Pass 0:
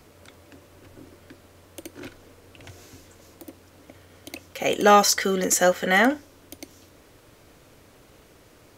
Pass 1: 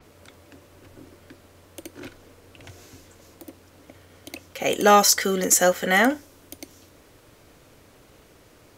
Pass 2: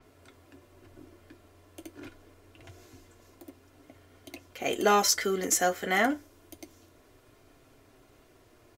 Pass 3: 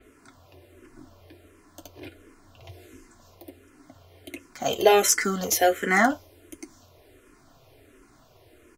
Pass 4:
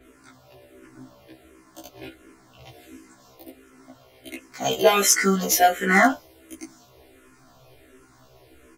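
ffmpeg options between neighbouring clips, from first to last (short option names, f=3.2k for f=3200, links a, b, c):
-af "adynamicequalizer=threshold=0.0126:dfrequency=6100:dqfactor=0.7:tfrequency=6100:tqfactor=0.7:attack=5:release=100:ratio=0.375:range=3:mode=boostabove:tftype=highshelf"
-filter_complex "[0:a]aecho=1:1:2.9:0.42,flanger=delay=7.5:depth=2.4:regen=-45:speed=0.26:shape=sinusoidal,asplit=2[a][b];[b]adynamicsmooth=sensitivity=3:basefreq=3.4k,volume=-7dB[c];[a][c]amix=inputs=2:normalize=0,volume=-5.5dB"
-filter_complex "[0:a]asplit=2[a][b];[b]aeval=exprs='sgn(val(0))*max(abs(val(0))-0.00794,0)':c=same,volume=-11dB[c];[a][c]amix=inputs=2:normalize=0,asplit=2[d][e];[e]afreqshift=-1.4[f];[d][f]amix=inputs=2:normalize=1,volume=6.5dB"
-af "afftfilt=real='re*1.73*eq(mod(b,3),0)':imag='im*1.73*eq(mod(b,3),0)':win_size=2048:overlap=0.75,volume=5.5dB"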